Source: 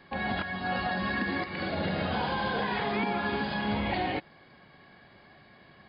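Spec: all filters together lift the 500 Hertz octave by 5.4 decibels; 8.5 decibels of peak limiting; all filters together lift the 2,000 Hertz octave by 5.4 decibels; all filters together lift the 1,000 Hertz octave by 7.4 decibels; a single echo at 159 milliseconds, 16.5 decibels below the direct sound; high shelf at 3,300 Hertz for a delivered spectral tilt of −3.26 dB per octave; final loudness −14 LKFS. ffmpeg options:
ffmpeg -i in.wav -af "equalizer=frequency=500:width_type=o:gain=4.5,equalizer=frequency=1000:width_type=o:gain=7.5,equalizer=frequency=2000:width_type=o:gain=6,highshelf=frequency=3300:gain=-8,alimiter=limit=-22dB:level=0:latency=1,aecho=1:1:159:0.15,volume=16dB" out.wav

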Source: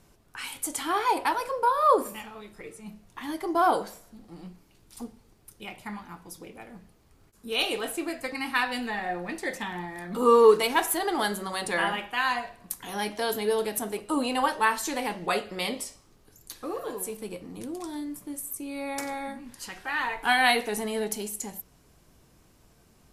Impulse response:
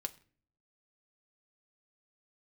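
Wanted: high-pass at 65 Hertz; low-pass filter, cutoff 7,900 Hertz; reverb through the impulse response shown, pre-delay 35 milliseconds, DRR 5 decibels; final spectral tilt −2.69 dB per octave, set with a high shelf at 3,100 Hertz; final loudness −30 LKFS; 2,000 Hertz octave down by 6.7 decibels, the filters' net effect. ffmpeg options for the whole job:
-filter_complex "[0:a]highpass=65,lowpass=7900,equalizer=frequency=2000:width_type=o:gain=-6.5,highshelf=frequency=3100:gain=-6,asplit=2[link_01][link_02];[1:a]atrim=start_sample=2205,adelay=35[link_03];[link_02][link_03]afir=irnorm=-1:irlink=0,volume=-3.5dB[link_04];[link_01][link_04]amix=inputs=2:normalize=0,volume=-1.5dB"

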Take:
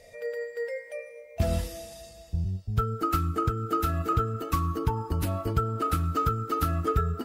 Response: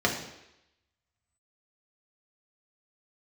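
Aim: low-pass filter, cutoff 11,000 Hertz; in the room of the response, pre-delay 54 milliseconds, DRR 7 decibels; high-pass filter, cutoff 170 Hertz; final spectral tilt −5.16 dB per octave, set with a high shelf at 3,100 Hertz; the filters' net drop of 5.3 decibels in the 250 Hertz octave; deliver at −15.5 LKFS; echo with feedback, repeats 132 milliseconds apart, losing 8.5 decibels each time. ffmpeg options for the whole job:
-filter_complex "[0:a]highpass=170,lowpass=11000,equalizer=frequency=250:width_type=o:gain=-6.5,highshelf=frequency=3100:gain=4.5,aecho=1:1:132|264|396|528:0.376|0.143|0.0543|0.0206,asplit=2[link_01][link_02];[1:a]atrim=start_sample=2205,adelay=54[link_03];[link_02][link_03]afir=irnorm=-1:irlink=0,volume=-20dB[link_04];[link_01][link_04]amix=inputs=2:normalize=0,volume=14.5dB"

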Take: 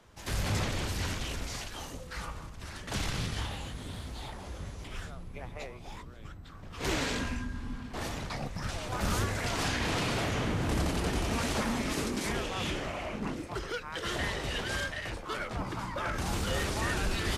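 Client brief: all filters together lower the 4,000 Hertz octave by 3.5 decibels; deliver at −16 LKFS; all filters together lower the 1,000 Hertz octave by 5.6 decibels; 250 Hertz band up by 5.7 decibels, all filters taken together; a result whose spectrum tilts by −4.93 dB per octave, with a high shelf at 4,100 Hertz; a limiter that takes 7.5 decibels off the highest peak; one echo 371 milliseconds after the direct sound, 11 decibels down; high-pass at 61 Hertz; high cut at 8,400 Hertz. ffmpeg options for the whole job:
ffmpeg -i in.wav -af "highpass=61,lowpass=8400,equalizer=frequency=250:width_type=o:gain=7.5,equalizer=frequency=1000:width_type=o:gain=-8,equalizer=frequency=4000:width_type=o:gain=-7,highshelf=frequency=4100:gain=5,alimiter=limit=-24dB:level=0:latency=1,aecho=1:1:371:0.282,volume=19dB" out.wav

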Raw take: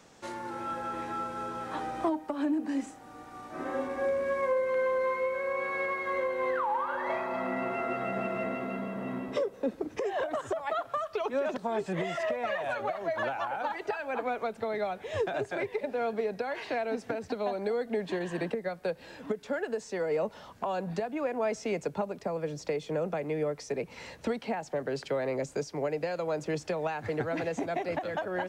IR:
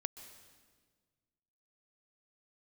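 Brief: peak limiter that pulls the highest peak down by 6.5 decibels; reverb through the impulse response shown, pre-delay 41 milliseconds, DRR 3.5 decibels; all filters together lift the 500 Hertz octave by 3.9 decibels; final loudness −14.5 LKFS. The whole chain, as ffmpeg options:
-filter_complex "[0:a]equalizer=frequency=500:width_type=o:gain=4.5,alimiter=limit=-22.5dB:level=0:latency=1,asplit=2[link_01][link_02];[1:a]atrim=start_sample=2205,adelay=41[link_03];[link_02][link_03]afir=irnorm=-1:irlink=0,volume=-2dB[link_04];[link_01][link_04]amix=inputs=2:normalize=0,volume=16dB"

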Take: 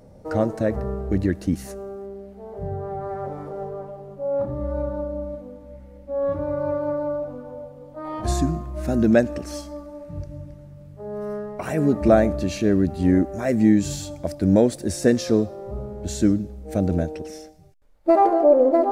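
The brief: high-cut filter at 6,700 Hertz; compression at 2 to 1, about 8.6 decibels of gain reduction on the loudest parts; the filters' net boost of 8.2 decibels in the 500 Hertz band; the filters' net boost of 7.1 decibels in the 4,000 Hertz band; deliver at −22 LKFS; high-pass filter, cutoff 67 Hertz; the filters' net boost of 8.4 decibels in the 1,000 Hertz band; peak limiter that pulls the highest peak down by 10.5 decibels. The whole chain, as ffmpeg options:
ffmpeg -i in.wav -af "highpass=67,lowpass=6700,equalizer=frequency=500:width_type=o:gain=7.5,equalizer=frequency=1000:width_type=o:gain=8,equalizer=frequency=4000:width_type=o:gain=9,acompressor=threshold=-19dB:ratio=2,volume=3.5dB,alimiter=limit=-12dB:level=0:latency=1" out.wav

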